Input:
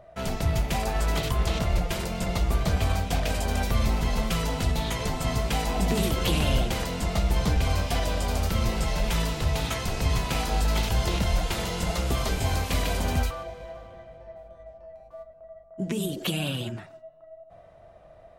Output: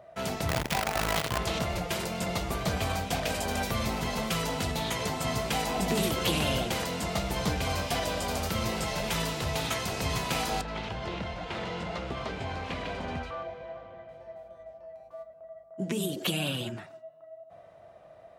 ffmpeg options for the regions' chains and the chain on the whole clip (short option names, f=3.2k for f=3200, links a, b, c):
-filter_complex "[0:a]asettb=1/sr,asplit=3[a][b][c];[a]atrim=end=0.494[d];[b]atrim=start=0.49:end=1.38,asetpts=PTS-STARTPTS,afade=t=in:d=0.004:c=qsin,afade=t=out:st=0.886:d=0.004:c=qsin,equalizer=f=340:w=2.4:g=-12,adynamicsmooth=sensitivity=6.5:basefreq=1.4k,acrusher=bits=5:dc=4:mix=0:aa=0.000001[e];[c]atrim=start=1.376[f];[d][e]acrossfade=d=0.004:c1=hsin:c2=qsin[g];[g][f]acrossfade=d=0.004:c1=qsin:c2=hsin,asettb=1/sr,asplit=3[h][i][j];[h]atrim=end=10.614[k];[i]atrim=start=10.61:end=14.09,asetpts=PTS-STARTPTS,afade=t=in:d=0.004:c=qsin,afade=t=out:st=3.476:d=0.004:c=qsin,lowpass=2.9k,acompressor=threshold=-29dB:ratio=2:attack=3.2:release=140:knee=1:detection=peak[l];[j]atrim=start=14.086[m];[k][l]acrossfade=d=0.004:c1=hsin:c2=qsin[n];[n][m]acrossfade=d=0.004:c1=qsin:c2=hsin,highpass=92,lowshelf=f=230:g=-4.5"